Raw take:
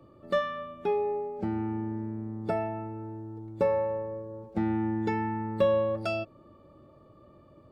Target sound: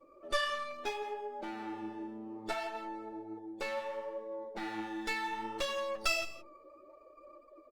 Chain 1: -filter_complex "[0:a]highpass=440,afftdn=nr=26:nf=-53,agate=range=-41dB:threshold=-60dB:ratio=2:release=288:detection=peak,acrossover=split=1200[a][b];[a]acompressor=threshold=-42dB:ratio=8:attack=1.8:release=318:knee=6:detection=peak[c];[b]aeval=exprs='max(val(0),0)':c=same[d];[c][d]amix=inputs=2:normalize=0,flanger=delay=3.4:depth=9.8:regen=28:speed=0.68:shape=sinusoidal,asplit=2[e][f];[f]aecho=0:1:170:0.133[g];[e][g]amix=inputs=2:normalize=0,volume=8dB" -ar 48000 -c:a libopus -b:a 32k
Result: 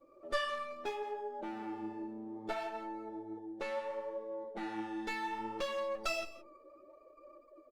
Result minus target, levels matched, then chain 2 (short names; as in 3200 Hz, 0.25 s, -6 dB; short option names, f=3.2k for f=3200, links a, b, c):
4000 Hz band -3.5 dB
-filter_complex "[0:a]highpass=440,highshelf=f=2.2k:g=10,afftdn=nr=26:nf=-53,agate=range=-41dB:threshold=-60dB:ratio=2:release=288:detection=peak,acrossover=split=1200[a][b];[a]acompressor=threshold=-42dB:ratio=8:attack=1.8:release=318:knee=6:detection=peak[c];[b]aeval=exprs='max(val(0),0)':c=same[d];[c][d]amix=inputs=2:normalize=0,flanger=delay=3.4:depth=9.8:regen=28:speed=0.68:shape=sinusoidal,asplit=2[e][f];[f]aecho=0:1:170:0.133[g];[e][g]amix=inputs=2:normalize=0,volume=8dB" -ar 48000 -c:a libopus -b:a 32k